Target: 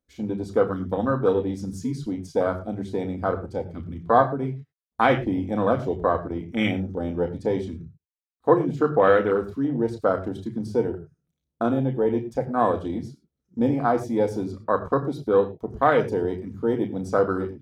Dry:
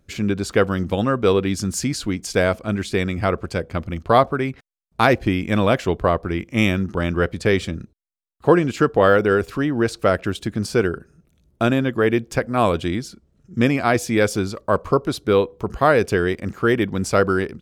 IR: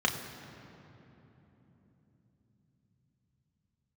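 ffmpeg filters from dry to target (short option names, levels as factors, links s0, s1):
-filter_complex "[0:a]afwtdn=0.1,highshelf=f=3200:g=9,asplit=2[s0][s1];[1:a]atrim=start_sample=2205,afade=t=out:st=0.17:d=0.01,atrim=end_sample=7938[s2];[s1][s2]afir=irnorm=-1:irlink=0,volume=0.398[s3];[s0][s3]amix=inputs=2:normalize=0,volume=0.376"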